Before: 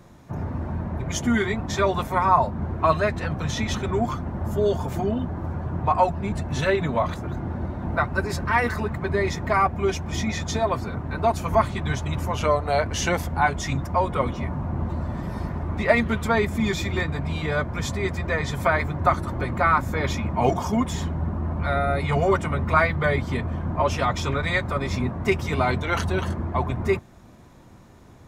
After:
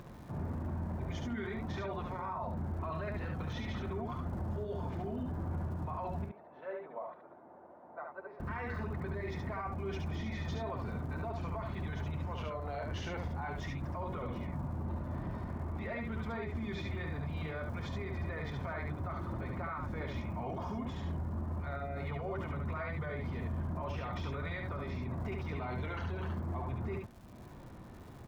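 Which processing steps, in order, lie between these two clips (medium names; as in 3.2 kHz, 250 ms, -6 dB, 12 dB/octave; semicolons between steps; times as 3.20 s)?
distance through air 250 m; upward compressor, threshold -38 dBFS; crackle 190 per s -44 dBFS; 6.24–8.40 s: ladder band-pass 760 Hz, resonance 25%; peak limiter -26.5 dBFS, peak gain reduction 20 dB; delay 71 ms -3.5 dB; trim -6.5 dB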